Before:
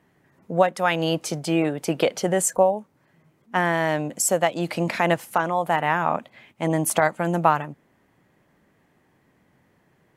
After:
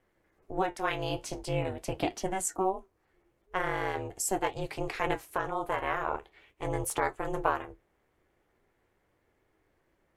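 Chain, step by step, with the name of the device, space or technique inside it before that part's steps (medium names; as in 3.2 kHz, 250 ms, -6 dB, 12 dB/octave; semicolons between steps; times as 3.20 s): alien voice (ring modulator 190 Hz; flange 0.43 Hz, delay 7.8 ms, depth 8.2 ms, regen -59%); trim -2.5 dB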